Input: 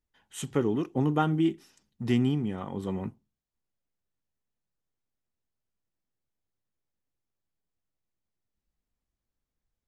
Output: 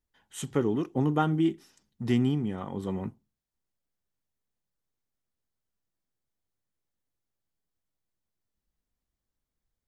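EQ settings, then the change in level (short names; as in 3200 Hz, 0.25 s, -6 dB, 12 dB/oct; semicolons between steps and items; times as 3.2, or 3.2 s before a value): bell 2600 Hz -3 dB 0.32 oct; 0.0 dB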